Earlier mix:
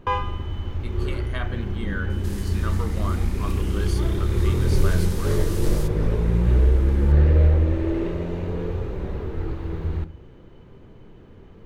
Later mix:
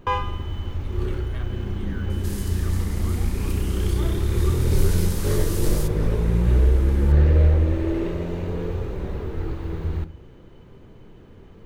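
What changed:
speech -12.0 dB; master: add treble shelf 6.1 kHz +7.5 dB

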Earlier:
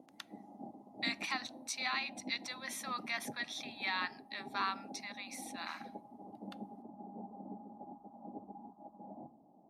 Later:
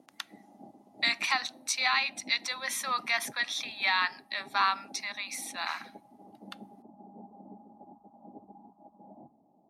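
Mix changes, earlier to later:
speech +9.5 dB; background: send off

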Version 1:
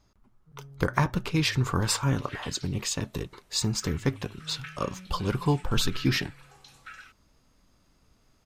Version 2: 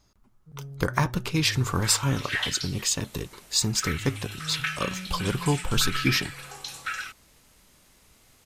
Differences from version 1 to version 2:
first sound +7.5 dB; second sound +12.0 dB; master: add treble shelf 4.3 kHz +8 dB

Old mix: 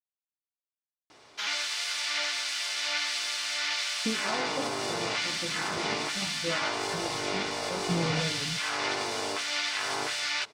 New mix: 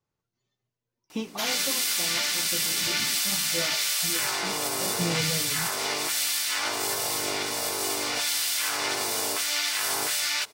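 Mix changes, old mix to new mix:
speech: entry -2.90 s; master: remove distance through air 110 m

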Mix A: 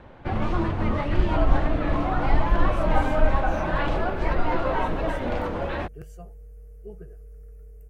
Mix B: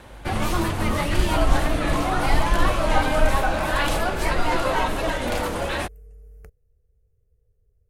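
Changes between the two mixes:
speech: entry -1.85 s; background: remove tape spacing loss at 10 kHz 33 dB

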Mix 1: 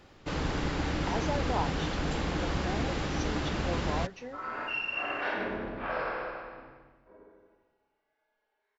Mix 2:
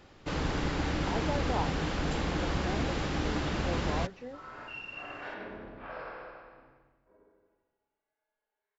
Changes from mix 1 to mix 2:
speech: add low-pass 1.2 kHz 6 dB/octave; second sound -7.5 dB; reverb: off

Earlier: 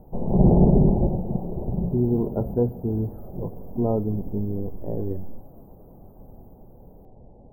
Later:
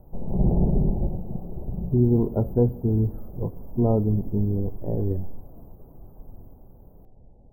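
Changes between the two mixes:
background -9.5 dB; master: add bass shelf 120 Hz +9.5 dB

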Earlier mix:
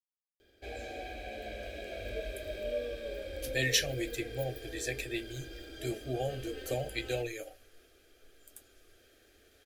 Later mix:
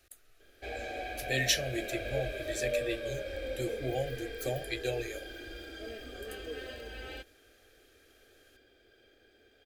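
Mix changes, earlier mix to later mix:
speech: entry -2.25 s; background: add peaking EQ 1.3 kHz +6.5 dB 2.1 oct

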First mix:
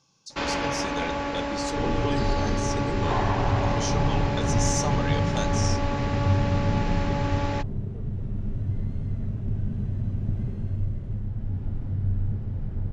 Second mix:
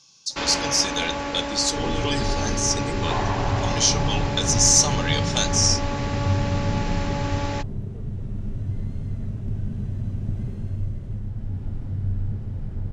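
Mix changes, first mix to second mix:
speech: add peaking EQ 3.9 kHz +10 dB 2.3 oct; master: add treble shelf 5.4 kHz +11.5 dB

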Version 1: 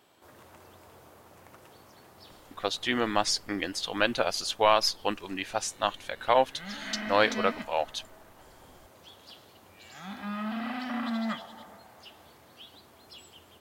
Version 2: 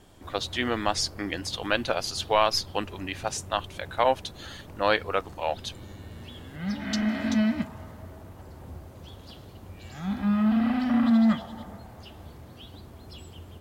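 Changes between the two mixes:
speech: entry -2.30 s; background: remove high-pass 890 Hz 6 dB/octave

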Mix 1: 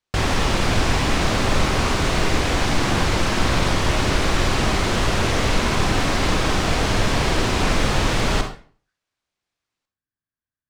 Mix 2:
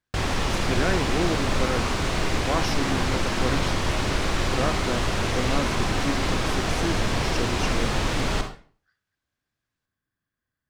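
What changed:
speech +10.5 dB; background -5.0 dB

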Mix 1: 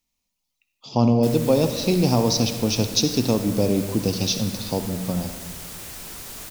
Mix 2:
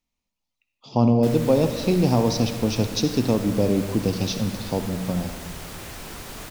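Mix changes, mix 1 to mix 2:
background +5.0 dB; master: add treble shelf 4.2 kHz -11.5 dB

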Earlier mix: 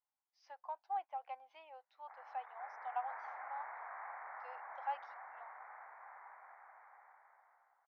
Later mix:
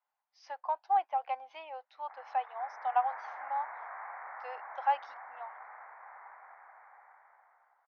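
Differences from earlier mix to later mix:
speech +11.5 dB; reverb: on, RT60 1.1 s

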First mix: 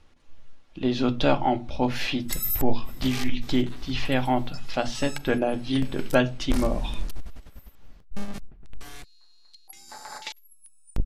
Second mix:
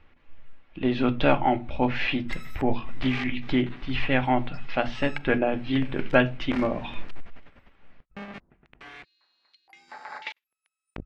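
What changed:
background: add high-pass 290 Hz 6 dB/octave; master: add resonant low-pass 2.3 kHz, resonance Q 1.8

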